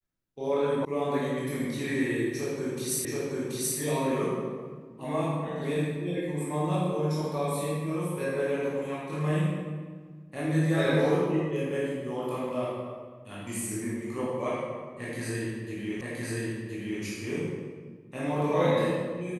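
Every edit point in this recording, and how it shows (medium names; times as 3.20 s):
0.85 s: sound stops dead
3.05 s: repeat of the last 0.73 s
16.01 s: repeat of the last 1.02 s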